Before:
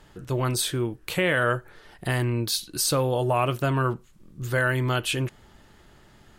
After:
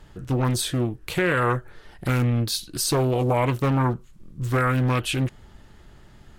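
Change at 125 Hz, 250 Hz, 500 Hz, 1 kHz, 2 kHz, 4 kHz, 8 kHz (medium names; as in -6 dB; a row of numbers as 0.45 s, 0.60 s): +4.0 dB, +4.5 dB, +0.5 dB, +2.0 dB, -2.0 dB, -0.5 dB, -1.0 dB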